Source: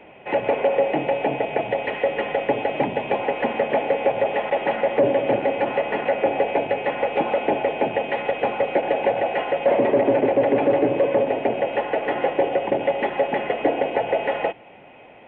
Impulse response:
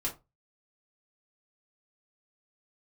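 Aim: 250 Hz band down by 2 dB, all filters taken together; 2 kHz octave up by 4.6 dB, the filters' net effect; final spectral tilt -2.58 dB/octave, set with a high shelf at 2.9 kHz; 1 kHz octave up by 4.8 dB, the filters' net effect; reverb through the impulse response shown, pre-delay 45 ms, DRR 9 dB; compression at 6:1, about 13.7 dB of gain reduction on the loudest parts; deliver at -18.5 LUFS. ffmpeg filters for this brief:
-filter_complex "[0:a]equalizer=f=250:t=o:g=-3,equalizer=f=1000:t=o:g=6.5,equalizer=f=2000:t=o:g=6,highshelf=f=2900:g=-5.5,acompressor=threshold=0.0355:ratio=6,asplit=2[s0][s1];[1:a]atrim=start_sample=2205,adelay=45[s2];[s1][s2]afir=irnorm=-1:irlink=0,volume=0.237[s3];[s0][s3]amix=inputs=2:normalize=0,volume=4.47"

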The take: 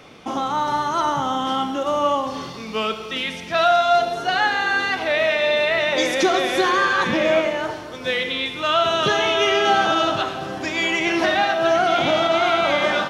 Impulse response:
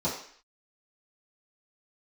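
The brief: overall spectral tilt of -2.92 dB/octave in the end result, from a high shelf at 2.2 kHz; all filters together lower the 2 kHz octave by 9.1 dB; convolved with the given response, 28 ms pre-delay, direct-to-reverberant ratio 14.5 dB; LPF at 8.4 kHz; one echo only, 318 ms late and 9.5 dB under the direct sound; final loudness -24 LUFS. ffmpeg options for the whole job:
-filter_complex "[0:a]lowpass=8400,equalizer=f=2000:t=o:g=-7.5,highshelf=f=2200:g=-8.5,aecho=1:1:318:0.335,asplit=2[s0][s1];[1:a]atrim=start_sample=2205,adelay=28[s2];[s1][s2]afir=irnorm=-1:irlink=0,volume=0.0668[s3];[s0][s3]amix=inputs=2:normalize=0,volume=0.841"

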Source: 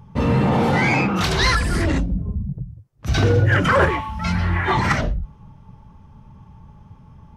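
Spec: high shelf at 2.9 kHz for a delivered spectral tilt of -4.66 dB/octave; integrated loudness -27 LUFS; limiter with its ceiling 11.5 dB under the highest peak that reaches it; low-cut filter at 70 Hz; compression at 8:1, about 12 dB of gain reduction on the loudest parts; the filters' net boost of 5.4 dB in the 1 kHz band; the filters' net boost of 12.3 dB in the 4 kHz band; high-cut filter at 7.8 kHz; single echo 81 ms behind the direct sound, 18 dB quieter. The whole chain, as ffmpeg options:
-af "highpass=70,lowpass=7800,equalizer=f=1000:t=o:g=5,highshelf=f=2900:g=8.5,equalizer=f=4000:t=o:g=8,acompressor=threshold=0.1:ratio=8,alimiter=limit=0.0891:level=0:latency=1,aecho=1:1:81:0.126,volume=1.33"

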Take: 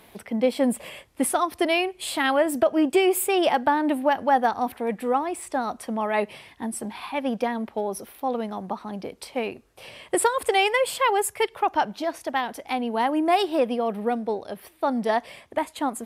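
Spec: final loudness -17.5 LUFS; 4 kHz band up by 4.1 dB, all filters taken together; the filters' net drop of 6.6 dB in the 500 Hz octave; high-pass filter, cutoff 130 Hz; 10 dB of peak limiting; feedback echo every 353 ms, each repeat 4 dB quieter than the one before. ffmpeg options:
-af "highpass=130,equalizer=f=500:t=o:g=-9,equalizer=f=4000:t=o:g=6,alimiter=limit=0.112:level=0:latency=1,aecho=1:1:353|706|1059|1412|1765|2118|2471|2824|3177:0.631|0.398|0.25|0.158|0.0994|0.0626|0.0394|0.0249|0.0157,volume=3.35"

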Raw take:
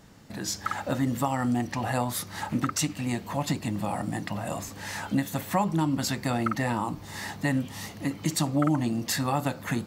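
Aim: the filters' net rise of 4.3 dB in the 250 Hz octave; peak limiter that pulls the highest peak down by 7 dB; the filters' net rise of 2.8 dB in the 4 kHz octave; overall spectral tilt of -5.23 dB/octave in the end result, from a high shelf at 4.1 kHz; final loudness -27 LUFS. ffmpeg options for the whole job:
-af "equalizer=f=250:t=o:g=5,equalizer=f=4000:t=o:g=7.5,highshelf=f=4100:g=-6.5,volume=1.19,alimiter=limit=0.158:level=0:latency=1"

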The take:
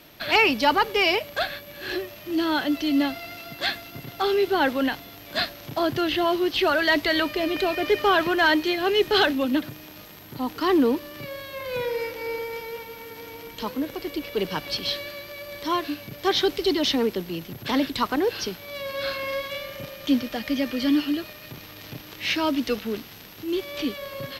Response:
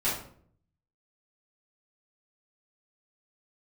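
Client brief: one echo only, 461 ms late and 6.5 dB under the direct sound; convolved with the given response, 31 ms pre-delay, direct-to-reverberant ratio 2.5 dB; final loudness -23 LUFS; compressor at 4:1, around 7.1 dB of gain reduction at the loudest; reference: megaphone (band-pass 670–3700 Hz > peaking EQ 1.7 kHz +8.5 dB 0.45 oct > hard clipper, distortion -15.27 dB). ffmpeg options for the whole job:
-filter_complex "[0:a]acompressor=threshold=0.0631:ratio=4,aecho=1:1:461:0.473,asplit=2[s0][s1];[1:a]atrim=start_sample=2205,adelay=31[s2];[s1][s2]afir=irnorm=-1:irlink=0,volume=0.251[s3];[s0][s3]amix=inputs=2:normalize=0,highpass=670,lowpass=3700,equalizer=f=1700:t=o:w=0.45:g=8.5,asoftclip=type=hard:threshold=0.0944,volume=1.88"

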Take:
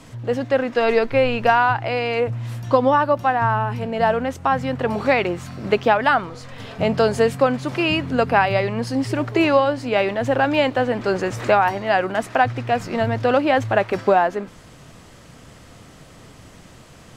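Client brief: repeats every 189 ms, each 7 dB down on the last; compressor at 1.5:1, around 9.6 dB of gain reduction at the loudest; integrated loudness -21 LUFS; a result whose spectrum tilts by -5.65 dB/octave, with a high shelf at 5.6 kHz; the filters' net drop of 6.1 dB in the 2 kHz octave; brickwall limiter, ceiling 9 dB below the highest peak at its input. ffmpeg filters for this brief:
-af "equalizer=f=2000:t=o:g=-8,highshelf=f=5600:g=-4.5,acompressor=threshold=0.01:ratio=1.5,alimiter=limit=0.0794:level=0:latency=1,aecho=1:1:189|378|567|756|945:0.447|0.201|0.0905|0.0407|0.0183,volume=3.16"

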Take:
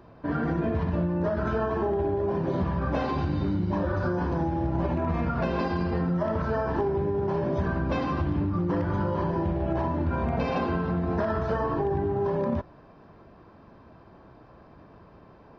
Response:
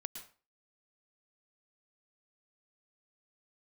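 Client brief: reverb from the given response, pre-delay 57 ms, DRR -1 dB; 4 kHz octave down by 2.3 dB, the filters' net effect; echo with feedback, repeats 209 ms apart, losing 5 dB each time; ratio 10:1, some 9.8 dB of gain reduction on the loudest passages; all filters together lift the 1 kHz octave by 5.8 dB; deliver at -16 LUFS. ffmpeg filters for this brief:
-filter_complex "[0:a]equalizer=f=1000:t=o:g=7,equalizer=f=4000:t=o:g=-3.5,acompressor=threshold=0.0282:ratio=10,aecho=1:1:209|418|627|836|1045|1254|1463:0.562|0.315|0.176|0.0988|0.0553|0.031|0.0173,asplit=2[s0][s1];[1:a]atrim=start_sample=2205,adelay=57[s2];[s1][s2]afir=irnorm=-1:irlink=0,volume=1.5[s3];[s0][s3]amix=inputs=2:normalize=0,volume=5.01"

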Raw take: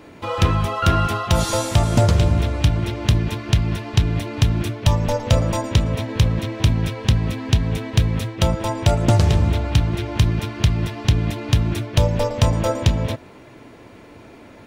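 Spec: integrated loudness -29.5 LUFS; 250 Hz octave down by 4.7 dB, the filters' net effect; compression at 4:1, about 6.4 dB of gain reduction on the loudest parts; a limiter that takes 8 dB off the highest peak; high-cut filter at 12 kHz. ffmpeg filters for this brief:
-af "lowpass=12000,equalizer=f=250:t=o:g=-8,acompressor=threshold=0.112:ratio=4,volume=0.75,alimiter=limit=0.119:level=0:latency=1"

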